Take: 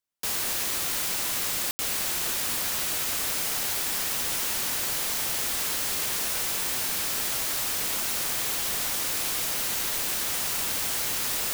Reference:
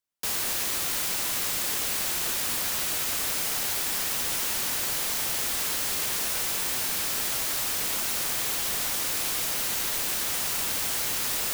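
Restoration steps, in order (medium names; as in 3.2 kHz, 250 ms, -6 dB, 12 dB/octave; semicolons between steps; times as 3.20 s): room tone fill 1.71–1.79 s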